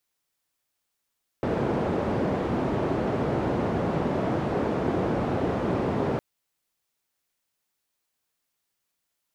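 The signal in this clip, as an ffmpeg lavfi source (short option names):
-f lavfi -i "anoisesrc=c=white:d=4.76:r=44100:seed=1,highpass=f=88,lowpass=f=490,volume=-4.3dB"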